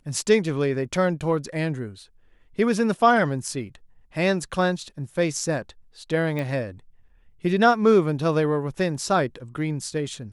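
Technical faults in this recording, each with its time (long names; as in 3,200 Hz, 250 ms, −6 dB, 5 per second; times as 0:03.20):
0:06.39: click −17 dBFS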